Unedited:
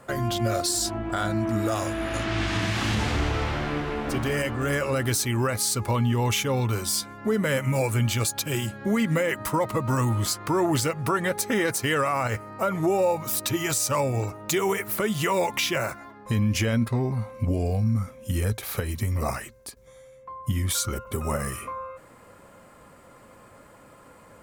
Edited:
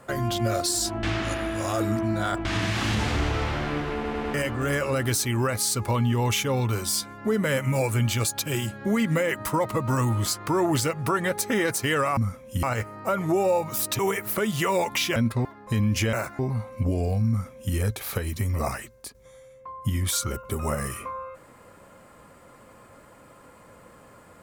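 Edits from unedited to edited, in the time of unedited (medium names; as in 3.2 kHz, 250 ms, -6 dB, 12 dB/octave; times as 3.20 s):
1.03–2.45 s: reverse
3.94 s: stutter in place 0.10 s, 4 plays
13.53–14.61 s: delete
15.78–16.04 s: swap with 16.72–17.01 s
17.91–18.37 s: copy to 12.17 s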